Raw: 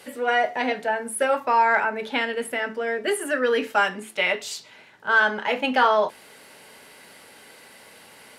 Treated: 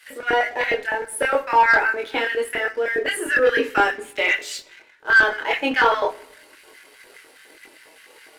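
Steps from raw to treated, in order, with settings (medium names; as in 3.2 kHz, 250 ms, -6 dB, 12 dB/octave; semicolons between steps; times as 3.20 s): high-pass 250 Hz 24 dB/octave; LFO high-pass square 4.9 Hz 330–1700 Hz; chorus voices 6, 0.24 Hz, delay 24 ms, depth 2.2 ms; waveshaping leveller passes 1; simulated room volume 2800 m³, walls furnished, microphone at 0.56 m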